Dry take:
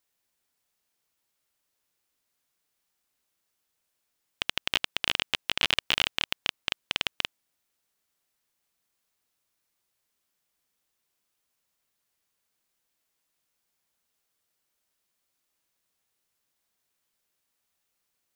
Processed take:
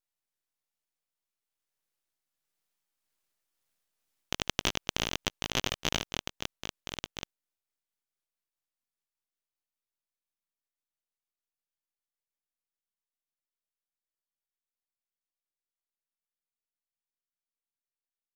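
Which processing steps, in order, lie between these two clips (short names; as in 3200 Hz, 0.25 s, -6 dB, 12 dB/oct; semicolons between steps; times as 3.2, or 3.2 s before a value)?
gliding pitch shift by +3.5 st starting unshifted; Doppler pass-by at 3.9, 10 m/s, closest 12 m; half-wave rectifier; gain +2.5 dB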